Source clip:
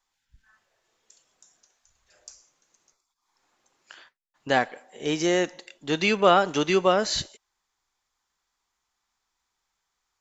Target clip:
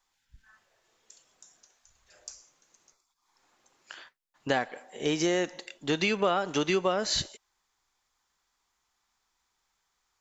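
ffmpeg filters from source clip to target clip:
-af "acompressor=threshold=-26dB:ratio=4,volume=2dB"

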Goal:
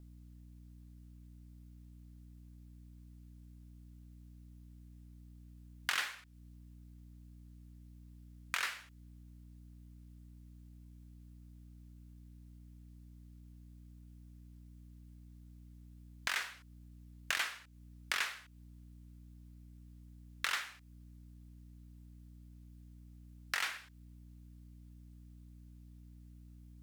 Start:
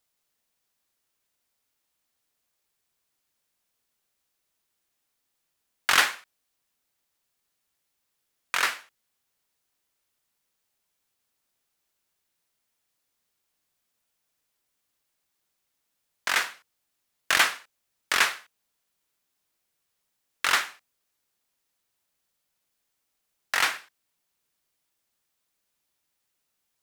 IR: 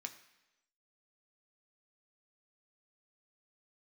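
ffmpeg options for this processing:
-filter_complex "[0:a]aeval=exprs='val(0)+0.00251*(sin(2*PI*60*n/s)+sin(2*PI*2*60*n/s)/2+sin(2*PI*3*60*n/s)/3+sin(2*PI*4*60*n/s)/4+sin(2*PI*5*60*n/s)/5)':c=same,acrossover=split=1300|4300[a][b][c];[a]acompressor=threshold=-49dB:ratio=4[d];[b]acompressor=threshold=-35dB:ratio=4[e];[c]acompressor=threshold=-45dB:ratio=4[f];[d][e][f]amix=inputs=3:normalize=0,volume=-1dB"

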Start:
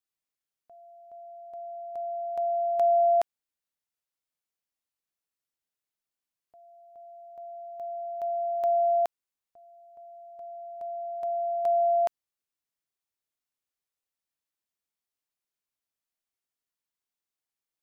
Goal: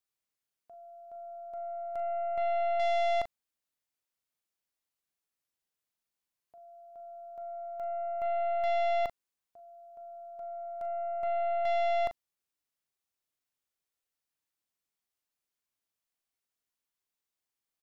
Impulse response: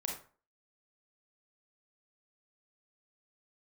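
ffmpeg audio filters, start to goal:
-filter_complex "[0:a]acontrast=85,aeval=exprs='(tanh(12.6*val(0)+0.4)-tanh(0.4))/12.6':c=same,asplit=2[a][b];[b]adelay=39,volume=-10dB[c];[a][c]amix=inputs=2:normalize=0,volume=-5.5dB"

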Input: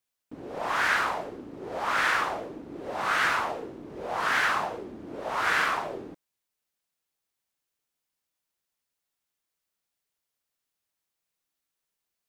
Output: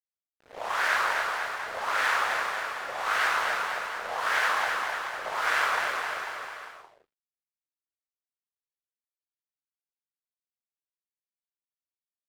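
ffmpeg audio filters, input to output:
-af "highpass=f=440:w=0.5412,highpass=f=440:w=1.3066,aeval=exprs='sgn(val(0))*max(abs(val(0))-0.00944,0)':c=same,aecho=1:1:260|494|704.6|894.1|1065:0.631|0.398|0.251|0.158|0.1"

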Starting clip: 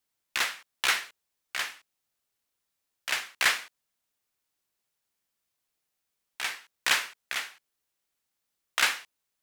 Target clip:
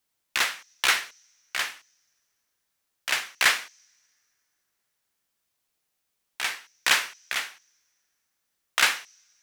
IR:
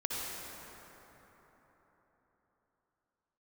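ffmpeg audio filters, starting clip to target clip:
-filter_complex "[0:a]asplit=2[a][b];[b]bandpass=f=5.9k:t=q:w=10:csg=0[c];[1:a]atrim=start_sample=2205[d];[c][d]afir=irnorm=-1:irlink=0,volume=-16dB[e];[a][e]amix=inputs=2:normalize=0,volume=3.5dB"

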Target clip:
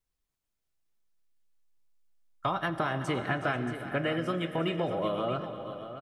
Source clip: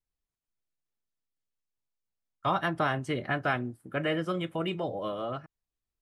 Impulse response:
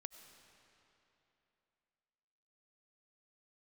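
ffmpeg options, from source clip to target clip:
-filter_complex "[0:a]acompressor=threshold=-31dB:ratio=6,aecho=1:1:370|489|628:0.2|0.112|0.266,asplit=2[a][b];[1:a]atrim=start_sample=2205[c];[b][c]afir=irnorm=-1:irlink=0,volume=12dB[d];[a][d]amix=inputs=2:normalize=0,volume=-5.5dB"

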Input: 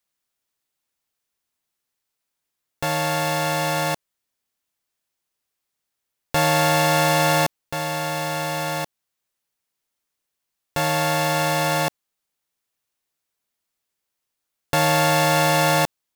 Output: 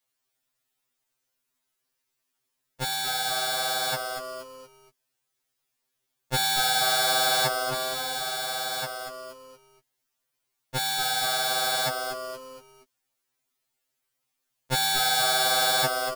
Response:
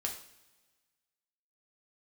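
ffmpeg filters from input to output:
-filter_complex "[0:a]asplit=5[a][b][c][d][e];[b]adelay=236,afreqshift=-120,volume=-8dB[f];[c]adelay=472,afreqshift=-240,volume=-16.2dB[g];[d]adelay=708,afreqshift=-360,volume=-24.4dB[h];[e]adelay=944,afreqshift=-480,volume=-32.5dB[i];[a][f][g][h][i]amix=inputs=5:normalize=0,afftfilt=real='re*2.45*eq(mod(b,6),0)':imag='im*2.45*eq(mod(b,6),0)':win_size=2048:overlap=0.75,volume=2.5dB"

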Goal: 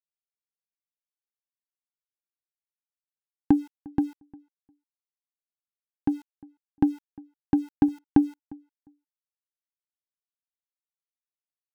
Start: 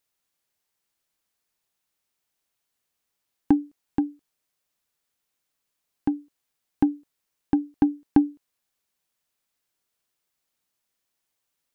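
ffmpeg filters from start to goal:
-filter_complex "[0:a]equalizer=f=120:w=1:g=4.5,aeval=exprs='val(0)*gte(abs(val(0)),0.00562)':c=same,asplit=2[a][b];[b]adelay=353,lowpass=f=1.6k:p=1,volume=-23.5dB,asplit=2[c][d];[d]adelay=353,lowpass=f=1.6k:p=1,volume=0.16[e];[a][c][e]amix=inputs=3:normalize=0,volume=-1.5dB"

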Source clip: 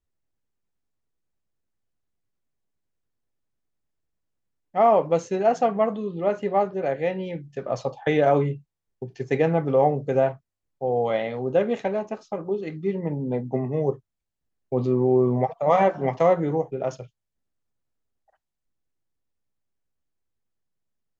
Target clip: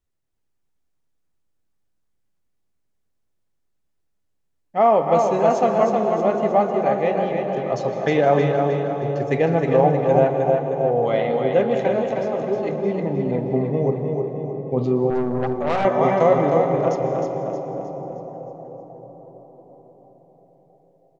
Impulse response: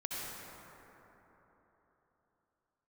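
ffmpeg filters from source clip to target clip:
-filter_complex "[0:a]aecho=1:1:312|624|936|1248|1560|1872:0.562|0.253|0.114|0.0512|0.0231|0.0104,asplit=2[a][b];[1:a]atrim=start_sample=2205,asetrate=24696,aresample=44100[c];[b][c]afir=irnorm=-1:irlink=0,volume=-10.5dB[d];[a][d]amix=inputs=2:normalize=0,asettb=1/sr,asplit=3[e][f][g];[e]atrim=end=15.104[h];[f]atrim=start=15.1:end=15.85,asetpts=PTS-STARTPTS,afade=t=in:d=0.004:c=qsin,afade=t=out:st=0.746:d=0.004:c=qsin,aeval=exprs='(tanh(7.08*val(0)+0.6)-tanh(0.6))/7.08':c=same[i];[g]atrim=start=15.846[j];[h][i]acrossfade=d=0.004:c1=hsin:c2=qsin[k];[k][j]acrossfade=d=0.004:c1=qsin:c2=hsin"

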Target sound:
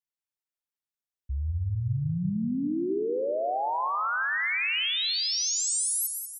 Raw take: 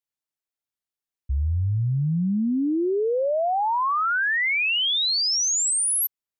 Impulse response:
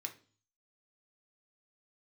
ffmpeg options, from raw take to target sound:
-filter_complex "[0:a]aecho=1:1:190|380|570|760|950:0.376|0.173|0.0795|0.0366|0.0168,asplit=2[a][b];[1:a]atrim=start_sample=2205,adelay=129[c];[b][c]afir=irnorm=-1:irlink=0,volume=-6dB[d];[a][d]amix=inputs=2:normalize=0,volume=-6.5dB"

